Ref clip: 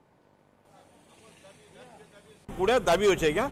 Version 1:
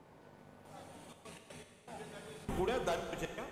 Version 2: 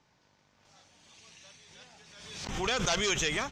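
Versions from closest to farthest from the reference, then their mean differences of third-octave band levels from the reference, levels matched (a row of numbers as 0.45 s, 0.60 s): 2, 1; 6.5 dB, 11.0 dB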